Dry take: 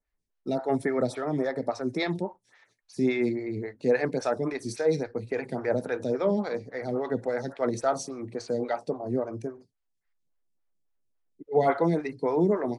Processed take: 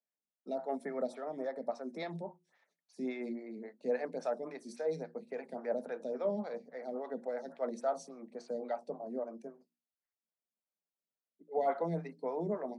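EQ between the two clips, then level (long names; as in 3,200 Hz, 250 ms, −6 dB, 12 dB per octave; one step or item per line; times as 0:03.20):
Chebyshev high-pass with heavy ripple 160 Hz, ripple 9 dB
mains-hum notches 60/120/180/240/300/360 Hz
−6.0 dB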